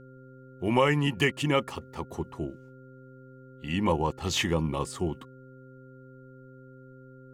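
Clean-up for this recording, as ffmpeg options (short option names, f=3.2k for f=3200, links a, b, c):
-af "bandreject=f=130.2:t=h:w=4,bandreject=f=260.4:t=h:w=4,bandreject=f=390.6:t=h:w=4,bandreject=f=520.8:t=h:w=4,bandreject=f=1.4k:w=30"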